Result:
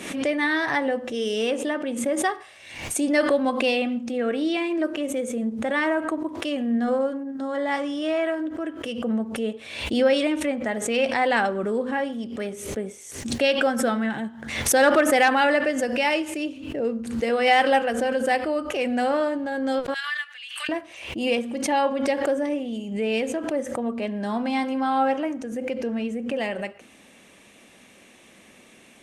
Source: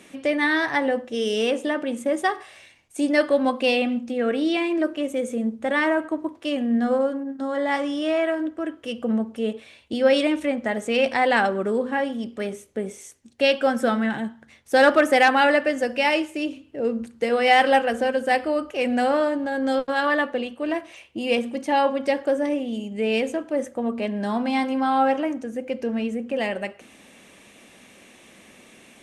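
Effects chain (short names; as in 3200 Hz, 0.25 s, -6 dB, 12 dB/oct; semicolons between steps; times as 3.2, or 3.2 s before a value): 19.94–20.69 inverse Chebyshev high-pass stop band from 290 Hz, stop band 80 dB; backwards sustainer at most 64 dB/s; gain -2 dB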